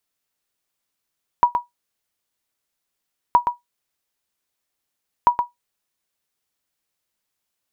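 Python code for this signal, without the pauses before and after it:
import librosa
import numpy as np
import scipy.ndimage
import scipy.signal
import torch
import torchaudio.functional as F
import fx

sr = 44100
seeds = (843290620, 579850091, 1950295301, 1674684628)

y = fx.sonar_ping(sr, hz=966.0, decay_s=0.15, every_s=1.92, pings=3, echo_s=0.12, echo_db=-7.0, level_db=-4.5)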